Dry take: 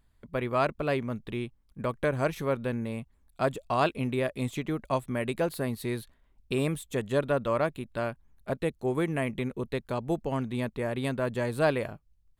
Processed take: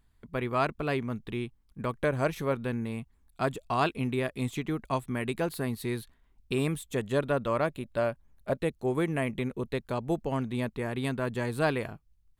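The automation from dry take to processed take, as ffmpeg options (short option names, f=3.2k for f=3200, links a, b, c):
-af "asetnsamples=n=441:p=0,asendcmd='2 equalizer g -0.5;2.52 equalizer g -9;6.92 equalizer g -2;7.67 equalizer g 5.5;8.58 equalizer g -1;10.71 equalizer g -8',equalizer=f=570:t=o:w=0.27:g=-7"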